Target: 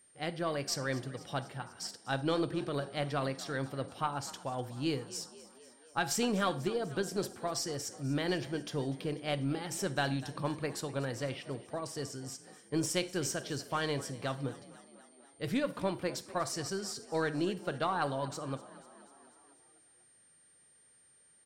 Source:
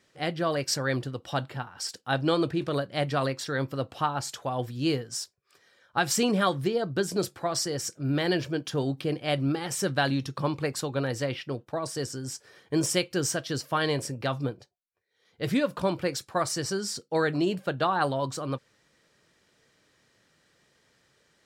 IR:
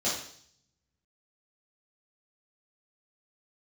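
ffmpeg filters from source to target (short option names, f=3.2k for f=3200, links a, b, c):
-filter_complex "[0:a]aeval=exprs='0.282*(cos(1*acos(clip(val(0)/0.282,-1,1)))-cos(1*PI/2))+0.0316*(cos(2*acos(clip(val(0)/0.282,-1,1)))-cos(2*PI/2))+0.00316*(cos(7*acos(clip(val(0)/0.282,-1,1)))-cos(7*PI/2))':c=same,asplit=7[a][b][c][d][e][f][g];[b]adelay=246,afreqshift=37,volume=-18.5dB[h];[c]adelay=492,afreqshift=74,volume=-22.4dB[i];[d]adelay=738,afreqshift=111,volume=-26.3dB[j];[e]adelay=984,afreqshift=148,volume=-30.1dB[k];[f]adelay=1230,afreqshift=185,volume=-34dB[l];[g]adelay=1476,afreqshift=222,volume=-37.9dB[m];[a][h][i][j][k][l][m]amix=inputs=7:normalize=0,aeval=exprs='val(0)+0.00178*sin(2*PI*9000*n/s)':c=same,asplit=2[n][o];[1:a]atrim=start_sample=2205,asetrate=61740,aresample=44100,adelay=38[p];[o][p]afir=irnorm=-1:irlink=0,volume=-22dB[q];[n][q]amix=inputs=2:normalize=0,volume=-6.5dB"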